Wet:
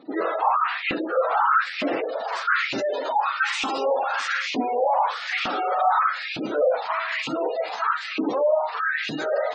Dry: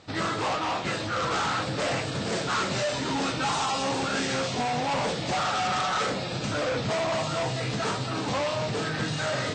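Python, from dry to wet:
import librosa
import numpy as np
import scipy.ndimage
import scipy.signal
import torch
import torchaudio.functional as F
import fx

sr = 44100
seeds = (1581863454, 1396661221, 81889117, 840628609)

y = fx.filter_lfo_highpass(x, sr, shape='saw_up', hz=1.1, low_hz=250.0, high_hz=2600.0, q=4.9)
y = fx.spec_gate(y, sr, threshold_db=-20, keep='strong')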